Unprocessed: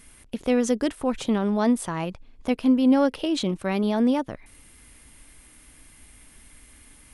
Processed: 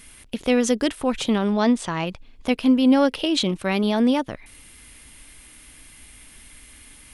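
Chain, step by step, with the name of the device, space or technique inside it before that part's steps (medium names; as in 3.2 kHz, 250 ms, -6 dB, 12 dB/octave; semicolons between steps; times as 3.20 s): 1.53–2.07 s: low-pass 7.7 kHz 24 dB/octave; presence and air boost (peaking EQ 3.2 kHz +6 dB 1.7 oct; treble shelf 9.5 kHz +4 dB); trim +2 dB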